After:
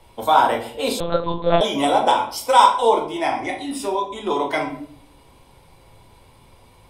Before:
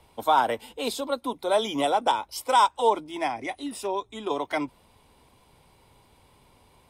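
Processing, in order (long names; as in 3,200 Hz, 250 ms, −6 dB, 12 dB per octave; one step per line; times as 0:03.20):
convolution reverb RT60 0.55 s, pre-delay 6 ms, DRR 0 dB
0:01.00–0:01.61: one-pitch LPC vocoder at 8 kHz 170 Hz
level +3.5 dB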